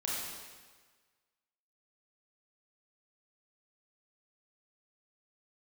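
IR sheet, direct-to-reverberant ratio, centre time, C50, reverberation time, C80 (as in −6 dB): −6.0 dB, 104 ms, −2.0 dB, 1.5 s, 0.5 dB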